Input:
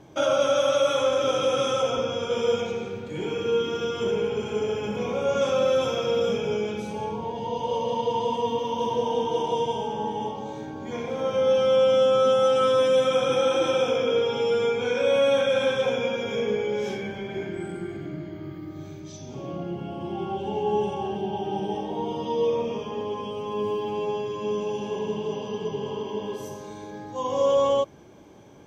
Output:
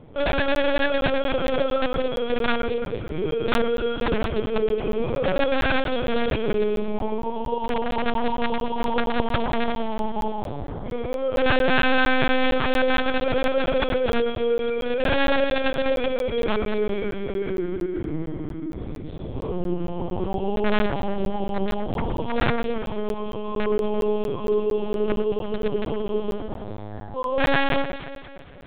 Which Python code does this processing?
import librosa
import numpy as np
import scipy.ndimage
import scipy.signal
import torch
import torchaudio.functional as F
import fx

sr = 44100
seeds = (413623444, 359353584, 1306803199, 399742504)

p1 = fx.low_shelf(x, sr, hz=490.0, db=7.5)
p2 = fx.rider(p1, sr, range_db=3, speed_s=2.0)
p3 = p1 + (p2 * 10.0 ** (1.0 / 20.0))
p4 = (np.mod(10.0 ** (6.5 / 20.0) * p3 + 1.0, 2.0) - 1.0) / 10.0 ** (6.5 / 20.0)
p5 = p4 + fx.echo_alternate(p4, sr, ms=114, hz=2200.0, feedback_pct=70, wet_db=-9.0, dry=0)
p6 = fx.lpc_vocoder(p5, sr, seeds[0], excitation='pitch_kept', order=8)
p7 = fx.buffer_crackle(p6, sr, first_s=0.32, period_s=0.23, block=512, kind='zero')
y = p7 * 10.0 ** (-7.5 / 20.0)